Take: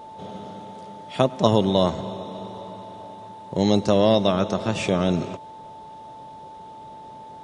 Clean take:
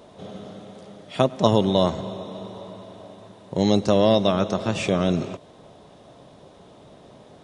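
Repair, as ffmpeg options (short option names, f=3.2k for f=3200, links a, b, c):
-af "bandreject=f=880:w=30"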